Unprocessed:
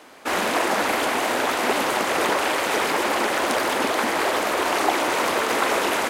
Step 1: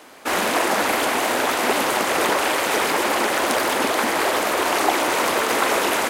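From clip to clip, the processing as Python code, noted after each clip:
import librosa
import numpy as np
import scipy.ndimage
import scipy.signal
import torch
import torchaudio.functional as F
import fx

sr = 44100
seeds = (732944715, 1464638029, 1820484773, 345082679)

y = fx.high_shelf(x, sr, hz=8300.0, db=5.5)
y = F.gain(torch.from_numpy(y), 1.5).numpy()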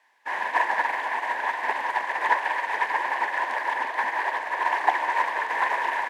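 y = fx.quant_dither(x, sr, seeds[0], bits=6, dither='triangular')
y = fx.double_bandpass(y, sr, hz=1300.0, octaves=0.85)
y = fx.upward_expand(y, sr, threshold_db=-39.0, expansion=2.5)
y = F.gain(torch.from_numpy(y), 8.5).numpy()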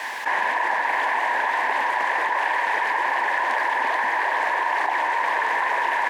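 y = fx.env_flatten(x, sr, amount_pct=100)
y = F.gain(torch.from_numpy(y), -6.0).numpy()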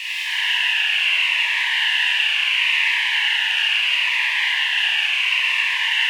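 y = fx.highpass_res(x, sr, hz=2800.0, q=9.4)
y = fx.rev_schroeder(y, sr, rt60_s=3.7, comb_ms=27, drr_db=-6.5)
y = fx.notch_cascade(y, sr, direction='falling', hz=0.73)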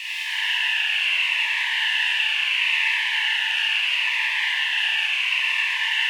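y = fx.comb_fb(x, sr, f0_hz=890.0, decay_s=0.15, harmonics='all', damping=0.0, mix_pct=60)
y = F.gain(torch.from_numpy(y), 4.0).numpy()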